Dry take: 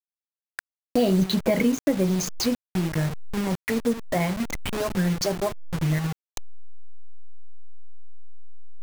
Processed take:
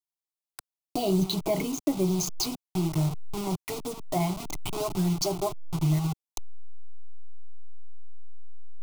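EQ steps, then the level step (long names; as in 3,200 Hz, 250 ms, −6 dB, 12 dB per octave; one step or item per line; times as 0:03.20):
phaser with its sweep stopped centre 340 Hz, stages 8
0.0 dB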